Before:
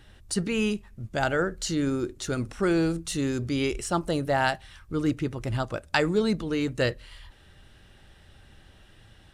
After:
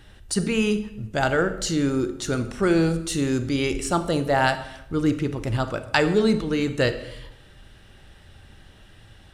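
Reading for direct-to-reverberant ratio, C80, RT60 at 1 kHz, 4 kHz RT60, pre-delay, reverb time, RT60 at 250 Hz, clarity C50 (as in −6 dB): 10.0 dB, 14.5 dB, 0.80 s, 0.65 s, 31 ms, 0.90 s, 1.1 s, 12.0 dB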